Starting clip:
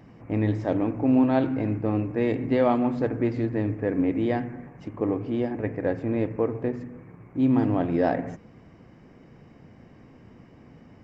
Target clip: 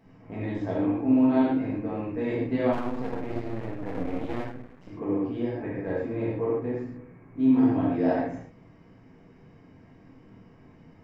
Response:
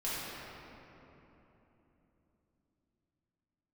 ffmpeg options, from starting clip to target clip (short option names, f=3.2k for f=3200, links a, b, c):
-filter_complex "[1:a]atrim=start_sample=2205,afade=t=out:st=0.2:d=0.01,atrim=end_sample=9261[a];[0:a][a]afir=irnorm=-1:irlink=0,asplit=3[b][c][d];[b]afade=t=out:st=2.72:d=0.02[e];[c]aeval=exprs='max(val(0),0)':c=same,afade=t=in:st=2.72:d=0.02,afade=t=out:st=4.9:d=0.02[f];[d]afade=t=in:st=4.9:d=0.02[g];[e][f][g]amix=inputs=3:normalize=0,volume=-6dB"